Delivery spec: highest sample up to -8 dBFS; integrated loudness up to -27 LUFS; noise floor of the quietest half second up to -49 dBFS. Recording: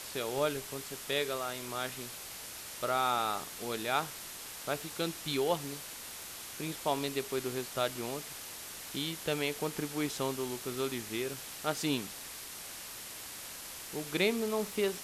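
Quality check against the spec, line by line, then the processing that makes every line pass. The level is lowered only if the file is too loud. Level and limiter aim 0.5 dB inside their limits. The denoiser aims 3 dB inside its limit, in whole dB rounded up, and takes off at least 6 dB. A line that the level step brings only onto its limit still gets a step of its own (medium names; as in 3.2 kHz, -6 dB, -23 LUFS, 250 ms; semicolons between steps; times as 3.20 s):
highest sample -16.5 dBFS: pass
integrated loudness -35.5 LUFS: pass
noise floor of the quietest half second -45 dBFS: fail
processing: noise reduction 7 dB, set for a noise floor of -45 dBFS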